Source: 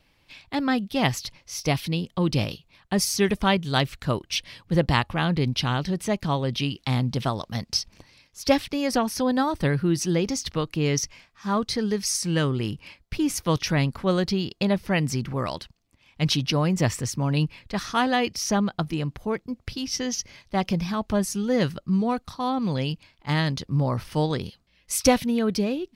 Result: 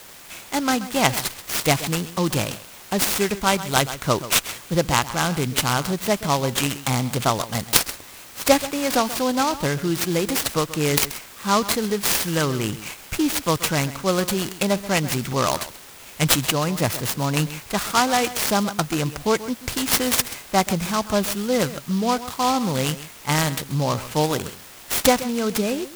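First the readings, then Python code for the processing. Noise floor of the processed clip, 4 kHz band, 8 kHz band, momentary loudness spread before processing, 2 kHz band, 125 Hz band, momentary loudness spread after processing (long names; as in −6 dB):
−43 dBFS, +4.5 dB, +7.0 dB, 8 LU, +5.0 dB, −0.5 dB, 7 LU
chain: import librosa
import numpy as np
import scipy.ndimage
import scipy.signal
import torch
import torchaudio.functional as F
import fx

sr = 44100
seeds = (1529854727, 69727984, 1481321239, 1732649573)

p1 = scipy.signal.sosfilt(scipy.signal.butter(4, 9700.0, 'lowpass', fs=sr, output='sos'), x)
p2 = fx.notch(p1, sr, hz=1800.0, q=8.8)
p3 = fx.dynamic_eq(p2, sr, hz=3000.0, q=4.7, threshold_db=-45.0, ratio=4.0, max_db=-3)
p4 = p3 + fx.echo_single(p3, sr, ms=132, db=-15.0, dry=0)
p5 = fx.rider(p4, sr, range_db=4, speed_s=0.5)
p6 = fx.low_shelf(p5, sr, hz=420.0, db=-9.5)
p7 = fx.quant_dither(p6, sr, seeds[0], bits=6, dither='triangular')
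p8 = p6 + (p7 * librosa.db_to_amplitude(-11.0))
p9 = fx.noise_mod_delay(p8, sr, seeds[1], noise_hz=4200.0, depth_ms=0.055)
y = p9 * librosa.db_to_amplitude(5.5)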